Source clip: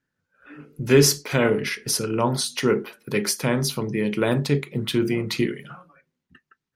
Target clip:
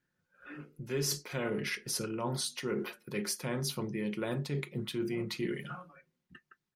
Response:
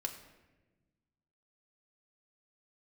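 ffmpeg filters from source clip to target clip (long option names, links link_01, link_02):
-af "aecho=1:1:5.6:0.33,areverse,acompressor=threshold=-31dB:ratio=4,areverse,volume=-2.5dB"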